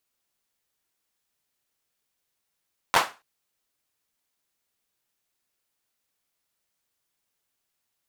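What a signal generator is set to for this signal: hand clap length 0.28 s, bursts 3, apart 11 ms, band 970 Hz, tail 0.28 s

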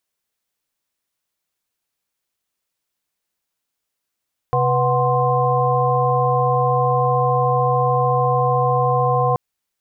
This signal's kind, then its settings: chord C3/B4/F#5/C6 sine, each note -20 dBFS 4.83 s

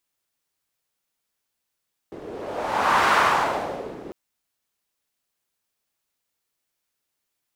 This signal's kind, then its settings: wind-like swept noise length 2.00 s, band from 380 Hz, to 1200 Hz, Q 2.2, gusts 1, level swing 19.5 dB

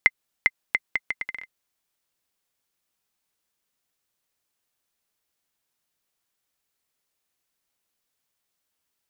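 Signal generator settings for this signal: bouncing ball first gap 0.40 s, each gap 0.72, 2070 Hz, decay 40 ms -2.5 dBFS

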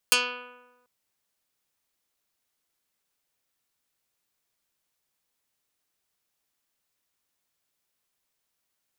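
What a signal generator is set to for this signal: plucked string B3, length 0.74 s, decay 1.16 s, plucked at 0.13, dark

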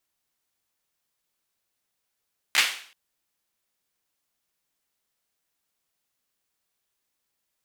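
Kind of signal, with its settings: hand clap length 0.38 s, bursts 3, apart 14 ms, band 2400 Hz, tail 0.50 s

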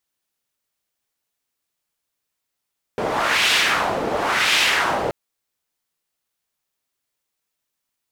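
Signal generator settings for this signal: wind-like swept noise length 2.13 s, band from 530 Hz, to 2900 Hz, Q 1.5, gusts 2, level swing 6 dB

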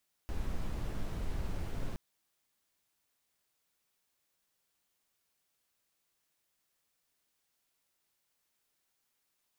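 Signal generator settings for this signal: noise brown, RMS -34.5 dBFS 1.67 s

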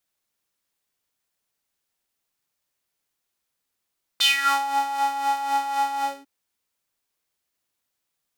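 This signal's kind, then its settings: synth patch with tremolo C#4, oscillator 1 square, interval 0 st, oscillator 2 level -5.5 dB, sub -20.5 dB, filter highpass, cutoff 330 Hz, Q 5.3, filter envelope 3.5 oct, filter decay 0.38 s, attack 11 ms, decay 0.46 s, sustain -13 dB, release 0.23 s, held 1.82 s, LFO 3.9 Hz, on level 8 dB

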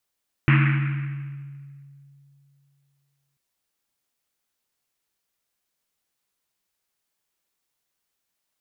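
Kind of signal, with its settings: Risset drum length 2.89 s, pitch 140 Hz, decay 2.85 s, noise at 1900 Hz, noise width 1400 Hz, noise 25%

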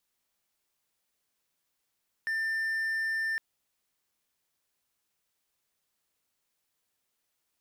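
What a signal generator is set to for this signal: tone triangle 1790 Hz -26 dBFS 1.11 s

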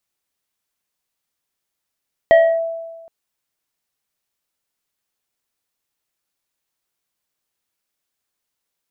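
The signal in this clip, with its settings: FM tone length 0.77 s, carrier 661 Hz, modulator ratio 1.89, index 0.58, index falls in 0.29 s linear, decay 1.32 s, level -5 dB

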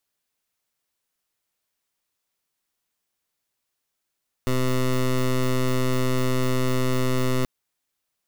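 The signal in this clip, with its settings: pulse 128 Hz, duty 16% -21.5 dBFS 2.98 s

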